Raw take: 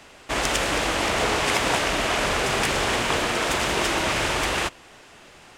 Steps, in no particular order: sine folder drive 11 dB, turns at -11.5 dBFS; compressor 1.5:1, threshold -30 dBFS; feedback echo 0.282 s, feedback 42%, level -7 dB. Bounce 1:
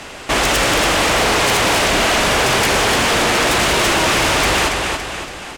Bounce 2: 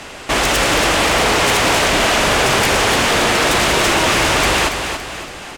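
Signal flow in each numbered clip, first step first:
compressor > feedback echo > sine folder; compressor > sine folder > feedback echo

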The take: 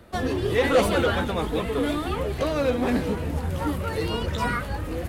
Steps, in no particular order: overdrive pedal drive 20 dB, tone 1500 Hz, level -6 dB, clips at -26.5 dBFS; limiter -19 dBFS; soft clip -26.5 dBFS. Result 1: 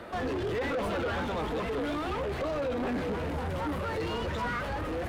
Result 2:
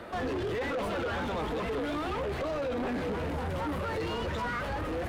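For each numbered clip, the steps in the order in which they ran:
overdrive pedal > limiter > soft clip; limiter > overdrive pedal > soft clip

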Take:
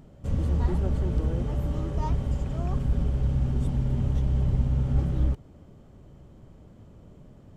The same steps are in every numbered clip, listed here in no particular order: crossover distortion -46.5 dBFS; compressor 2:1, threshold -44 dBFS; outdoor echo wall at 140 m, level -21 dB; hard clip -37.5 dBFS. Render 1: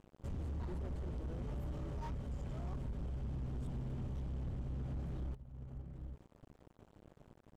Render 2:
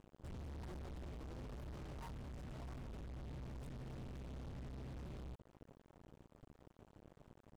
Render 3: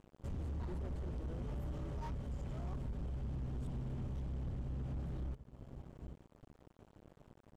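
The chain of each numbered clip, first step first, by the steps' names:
crossover distortion > outdoor echo > compressor > hard clip; hard clip > outdoor echo > compressor > crossover distortion; outdoor echo > crossover distortion > compressor > hard clip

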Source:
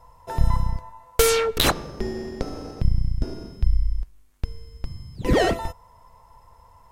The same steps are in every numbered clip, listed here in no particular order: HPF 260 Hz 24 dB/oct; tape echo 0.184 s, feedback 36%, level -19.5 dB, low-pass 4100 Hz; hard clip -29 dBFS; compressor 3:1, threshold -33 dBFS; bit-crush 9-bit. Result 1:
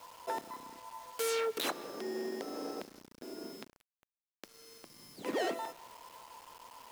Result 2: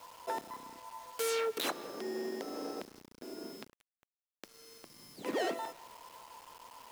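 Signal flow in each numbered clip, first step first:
compressor > hard clip > HPF > tape echo > bit-crush; compressor > tape echo > hard clip > HPF > bit-crush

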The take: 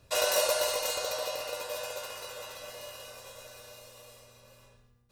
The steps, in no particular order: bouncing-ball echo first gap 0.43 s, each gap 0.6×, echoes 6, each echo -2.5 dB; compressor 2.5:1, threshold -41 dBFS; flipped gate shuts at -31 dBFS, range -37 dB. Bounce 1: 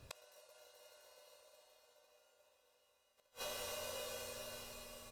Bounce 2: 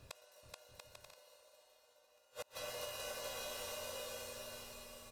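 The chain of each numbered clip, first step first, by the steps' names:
bouncing-ball echo > flipped gate > compressor; flipped gate > bouncing-ball echo > compressor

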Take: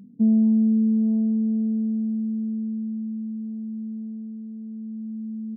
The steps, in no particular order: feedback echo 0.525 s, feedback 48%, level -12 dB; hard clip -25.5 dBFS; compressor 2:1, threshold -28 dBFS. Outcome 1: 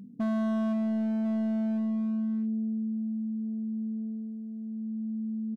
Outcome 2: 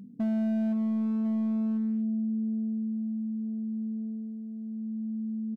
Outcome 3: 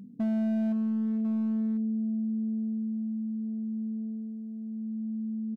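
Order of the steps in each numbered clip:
feedback echo > hard clip > compressor; feedback echo > compressor > hard clip; compressor > feedback echo > hard clip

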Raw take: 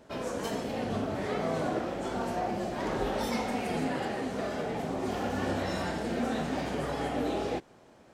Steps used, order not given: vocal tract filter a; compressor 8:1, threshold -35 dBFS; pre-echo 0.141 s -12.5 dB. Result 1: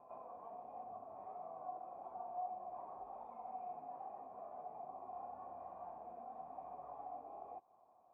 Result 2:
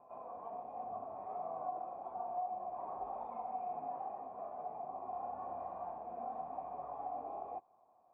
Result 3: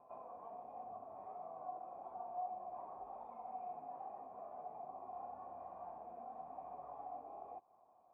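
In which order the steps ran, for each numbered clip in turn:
pre-echo > compressor > vocal tract filter; pre-echo > vocal tract filter > compressor; compressor > pre-echo > vocal tract filter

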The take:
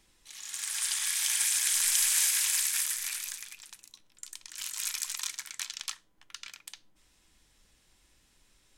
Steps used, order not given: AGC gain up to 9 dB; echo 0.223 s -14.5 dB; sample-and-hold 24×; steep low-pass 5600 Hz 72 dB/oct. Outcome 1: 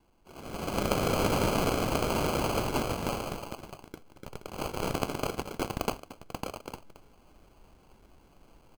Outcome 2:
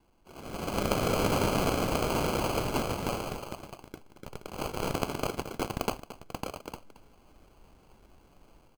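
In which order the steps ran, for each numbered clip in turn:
echo > AGC > steep low-pass > sample-and-hold; AGC > steep low-pass > sample-and-hold > echo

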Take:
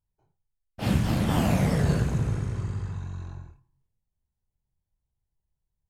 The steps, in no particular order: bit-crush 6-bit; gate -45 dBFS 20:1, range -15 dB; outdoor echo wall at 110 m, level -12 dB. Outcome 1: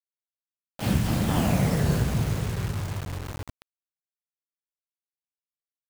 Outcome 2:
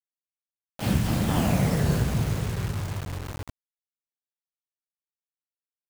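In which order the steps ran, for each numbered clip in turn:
gate > outdoor echo > bit-crush; outdoor echo > gate > bit-crush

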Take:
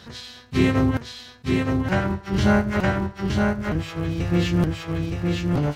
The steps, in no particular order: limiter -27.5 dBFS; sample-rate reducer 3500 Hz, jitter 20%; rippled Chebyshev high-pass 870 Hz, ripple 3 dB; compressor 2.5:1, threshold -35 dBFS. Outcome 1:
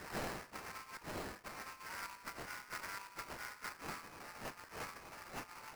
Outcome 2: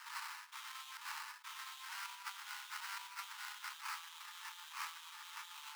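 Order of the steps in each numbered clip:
compressor > limiter > rippled Chebyshev high-pass > sample-rate reducer; sample-rate reducer > limiter > compressor > rippled Chebyshev high-pass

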